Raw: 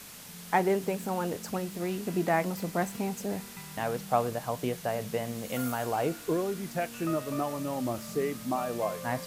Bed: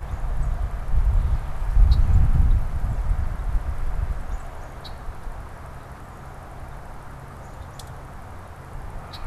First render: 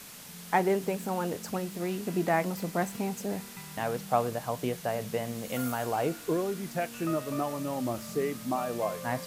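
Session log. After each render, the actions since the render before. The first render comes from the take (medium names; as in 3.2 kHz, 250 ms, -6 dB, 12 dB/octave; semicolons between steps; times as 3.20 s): de-hum 50 Hz, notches 2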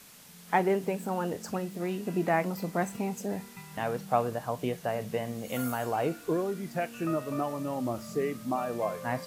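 noise print and reduce 6 dB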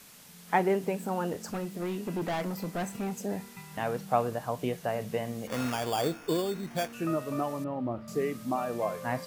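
1.33–3.12 s: overload inside the chain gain 28.5 dB; 5.47–6.93 s: sample-rate reducer 4 kHz; 7.64–8.08 s: distance through air 470 m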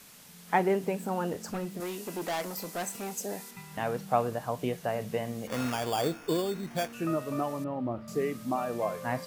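1.80–3.51 s: tone controls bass -11 dB, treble +8 dB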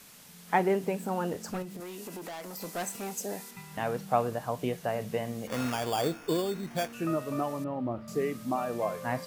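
1.62–2.61 s: compression, threshold -37 dBFS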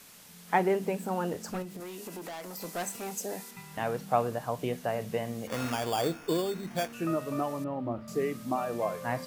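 hum notches 50/100/150/200/250 Hz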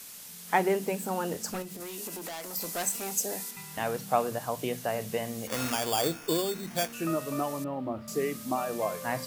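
treble shelf 3.7 kHz +10 dB; hum notches 60/120/180 Hz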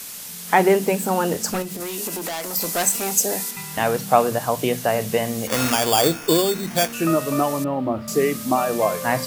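trim +10.5 dB; peak limiter -2 dBFS, peak gain reduction 3 dB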